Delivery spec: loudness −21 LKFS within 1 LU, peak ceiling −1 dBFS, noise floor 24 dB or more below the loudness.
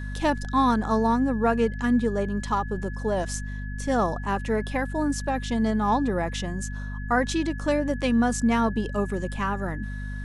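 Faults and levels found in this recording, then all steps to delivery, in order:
mains hum 50 Hz; hum harmonics up to 250 Hz; level of the hum −30 dBFS; interfering tone 1,700 Hz; level of the tone −41 dBFS; integrated loudness −25.5 LKFS; sample peak −11.0 dBFS; target loudness −21.0 LKFS
→ mains-hum notches 50/100/150/200/250 Hz
notch filter 1,700 Hz, Q 30
level +4.5 dB

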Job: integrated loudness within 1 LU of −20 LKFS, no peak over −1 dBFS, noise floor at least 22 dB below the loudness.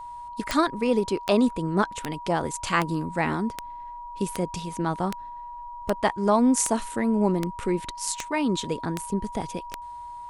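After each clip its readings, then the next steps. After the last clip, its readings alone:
number of clicks 13; interfering tone 960 Hz; level of the tone −36 dBFS; integrated loudness −26.0 LKFS; sample peak −7.5 dBFS; target loudness −20.0 LKFS
→ click removal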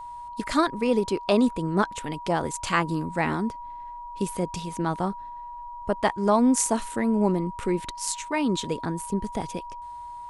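number of clicks 0; interfering tone 960 Hz; level of the tone −36 dBFS
→ notch filter 960 Hz, Q 30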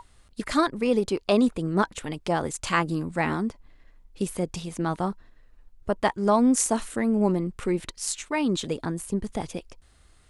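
interfering tone none found; integrated loudness −26.0 LKFS; sample peak −7.5 dBFS; target loudness −20.0 LKFS
→ level +6 dB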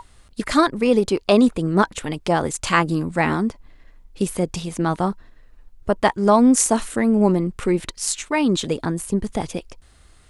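integrated loudness −20.0 LKFS; sample peak −1.5 dBFS; background noise floor −51 dBFS

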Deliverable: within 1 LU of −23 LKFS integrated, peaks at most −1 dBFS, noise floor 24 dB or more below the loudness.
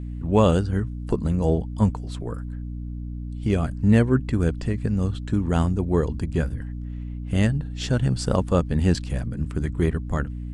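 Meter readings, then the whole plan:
mains hum 60 Hz; hum harmonics up to 300 Hz; level of the hum −29 dBFS; integrated loudness −24.0 LKFS; sample peak −5.0 dBFS; target loudness −23.0 LKFS
→ mains-hum notches 60/120/180/240/300 Hz
level +1 dB

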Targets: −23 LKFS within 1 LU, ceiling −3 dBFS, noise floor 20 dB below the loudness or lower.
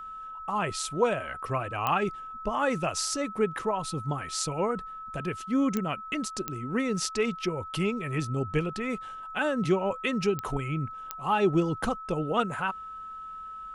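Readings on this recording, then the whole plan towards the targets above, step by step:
number of clicks 5; interfering tone 1,300 Hz; level of the tone −38 dBFS; integrated loudness −29.5 LKFS; sample peak −11.5 dBFS; target loudness −23.0 LKFS
→ click removal
notch filter 1,300 Hz, Q 30
level +6.5 dB

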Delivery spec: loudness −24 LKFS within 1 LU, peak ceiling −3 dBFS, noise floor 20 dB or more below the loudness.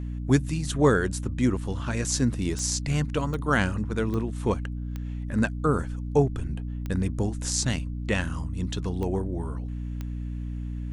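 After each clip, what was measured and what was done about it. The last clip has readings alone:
number of clicks 7; mains hum 60 Hz; hum harmonics up to 300 Hz; level of the hum −30 dBFS; integrated loudness −27.5 LKFS; sample peak −7.5 dBFS; target loudness −24.0 LKFS
→ click removal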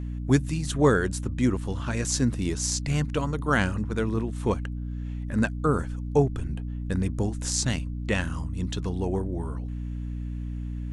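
number of clicks 0; mains hum 60 Hz; hum harmonics up to 300 Hz; level of the hum −30 dBFS
→ mains-hum notches 60/120/180/240/300 Hz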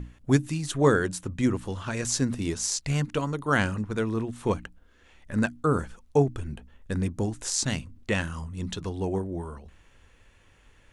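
mains hum none found; integrated loudness −28.0 LKFS; sample peak −7.5 dBFS; target loudness −24.0 LKFS
→ level +4 dB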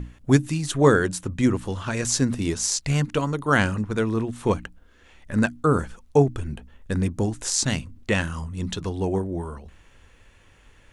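integrated loudness −24.0 LKFS; sample peak −3.5 dBFS; background noise floor −55 dBFS

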